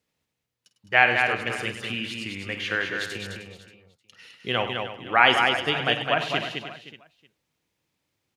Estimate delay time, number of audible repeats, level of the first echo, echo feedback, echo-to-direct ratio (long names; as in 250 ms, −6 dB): 50 ms, 9, −12.5 dB, repeats not evenly spaced, −2.5 dB